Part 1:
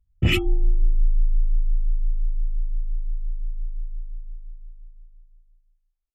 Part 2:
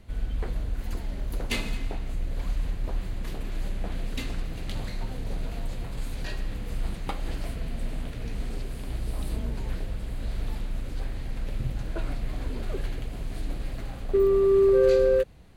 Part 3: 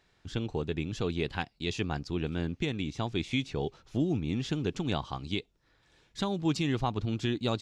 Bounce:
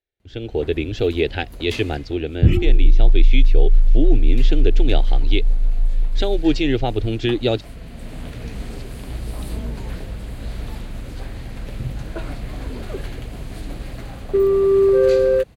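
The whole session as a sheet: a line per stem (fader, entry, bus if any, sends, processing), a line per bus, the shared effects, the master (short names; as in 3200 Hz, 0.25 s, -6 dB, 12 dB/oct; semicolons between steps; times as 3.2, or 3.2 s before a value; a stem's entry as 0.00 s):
-10.5 dB, 2.20 s, no send, tilt shelf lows +10 dB, about 630 Hz
-7.0 dB, 0.20 s, no send, HPF 42 Hz; auto duck -9 dB, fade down 0.20 s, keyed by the third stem
+2.5 dB, 0.00 s, no send, fixed phaser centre 440 Hz, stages 4; gate with hold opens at -58 dBFS; LPF 3300 Hz 12 dB/oct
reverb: off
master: AGC gain up to 12 dB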